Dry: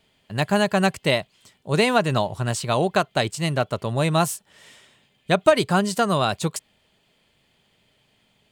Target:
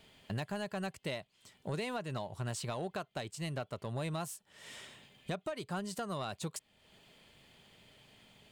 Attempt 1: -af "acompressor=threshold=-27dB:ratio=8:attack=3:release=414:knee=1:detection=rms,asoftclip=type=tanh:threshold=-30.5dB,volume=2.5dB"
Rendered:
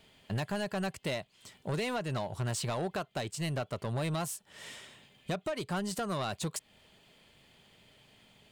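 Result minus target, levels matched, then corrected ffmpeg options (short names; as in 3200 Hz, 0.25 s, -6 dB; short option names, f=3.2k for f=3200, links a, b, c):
compressor: peak gain reduction -6.5 dB
-af "acompressor=threshold=-34.5dB:ratio=8:attack=3:release=414:knee=1:detection=rms,asoftclip=type=tanh:threshold=-30.5dB,volume=2.5dB"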